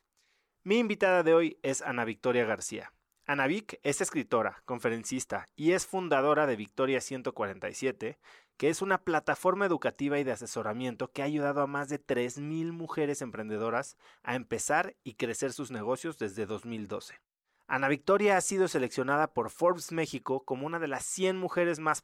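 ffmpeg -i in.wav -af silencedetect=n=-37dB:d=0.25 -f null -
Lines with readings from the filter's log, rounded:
silence_start: 0.00
silence_end: 0.66 | silence_duration: 0.66
silence_start: 2.86
silence_end: 3.29 | silence_duration: 0.43
silence_start: 8.11
silence_end: 8.60 | silence_duration: 0.49
silence_start: 13.90
silence_end: 14.25 | silence_duration: 0.36
silence_start: 17.07
silence_end: 17.70 | silence_duration: 0.63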